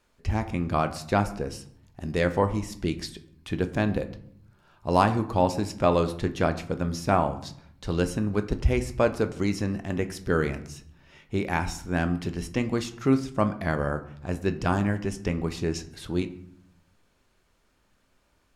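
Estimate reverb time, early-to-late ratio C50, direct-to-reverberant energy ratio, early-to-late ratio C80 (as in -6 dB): 0.65 s, 14.5 dB, 9.0 dB, 16.5 dB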